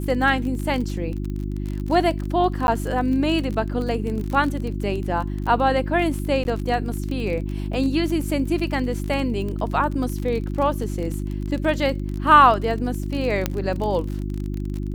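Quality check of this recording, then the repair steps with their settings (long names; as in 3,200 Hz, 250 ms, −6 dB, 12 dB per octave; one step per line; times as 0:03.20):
surface crackle 34 per second −27 dBFS
mains hum 50 Hz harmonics 7 −27 dBFS
0:02.67–0:02.68: drop-out 11 ms
0:06.44–0:06.45: drop-out 11 ms
0:13.46: click −6 dBFS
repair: click removal
hum removal 50 Hz, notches 7
repair the gap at 0:02.67, 11 ms
repair the gap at 0:06.44, 11 ms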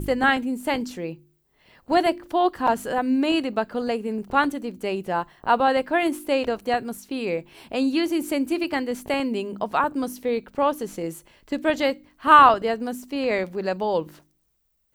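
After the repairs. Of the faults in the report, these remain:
0:13.46: click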